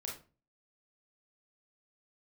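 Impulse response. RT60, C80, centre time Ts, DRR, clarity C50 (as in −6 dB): 0.35 s, 13.0 dB, 32 ms, −2.5 dB, 5.5 dB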